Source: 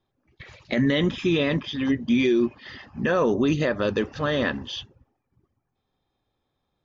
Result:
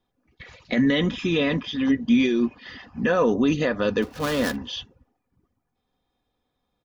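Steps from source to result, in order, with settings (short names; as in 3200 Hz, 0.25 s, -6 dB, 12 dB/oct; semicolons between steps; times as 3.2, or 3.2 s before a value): 4.02–4.56 switching dead time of 0.16 ms; comb 4.1 ms, depth 40%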